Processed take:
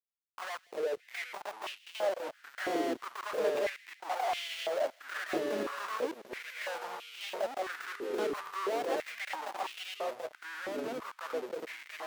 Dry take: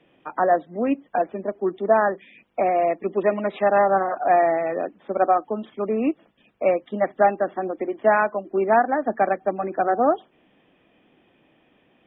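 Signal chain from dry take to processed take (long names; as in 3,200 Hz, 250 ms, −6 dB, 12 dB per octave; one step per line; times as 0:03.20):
fade in at the beginning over 3.48 s
downward compressor 10 to 1, threshold −31 dBFS, peak gain reduction 19 dB
comparator with hysteresis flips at −41 dBFS
gate pattern "xxx..xxxx.xxxxxx" 77 BPM −60 dB
sine wavefolder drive 15 dB, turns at −30.5 dBFS
delay with pitch and tempo change per echo 273 ms, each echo −3 semitones, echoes 3
delay with a high-pass on its return 162 ms, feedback 63%, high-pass 2,000 Hz, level −19.5 dB
high-pass on a step sequencer 3 Hz 330–2,800 Hz
level −5.5 dB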